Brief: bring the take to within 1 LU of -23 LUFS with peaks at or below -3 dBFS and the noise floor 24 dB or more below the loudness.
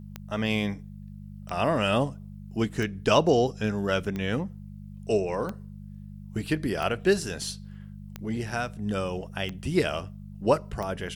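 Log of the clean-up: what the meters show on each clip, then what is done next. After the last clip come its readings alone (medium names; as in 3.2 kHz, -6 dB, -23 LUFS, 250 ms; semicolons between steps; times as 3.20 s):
clicks found 9; hum 50 Hz; highest harmonic 200 Hz; hum level -40 dBFS; loudness -28.0 LUFS; peak level -7.0 dBFS; loudness target -23.0 LUFS
-> de-click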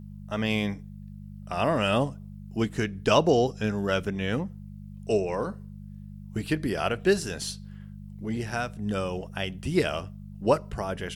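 clicks found 0; hum 50 Hz; highest harmonic 200 Hz; hum level -40 dBFS
-> de-hum 50 Hz, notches 4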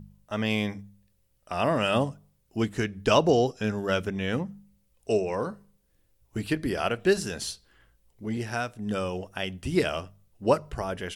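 hum not found; loudness -28.0 LUFS; peak level -7.0 dBFS; loudness target -23.0 LUFS
-> trim +5 dB; peak limiter -3 dBFS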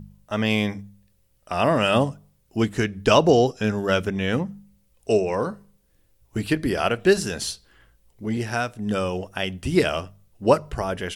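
loudness -23.5 LUFS; peak level -3.0 dBFS; noise floor -64 dBFS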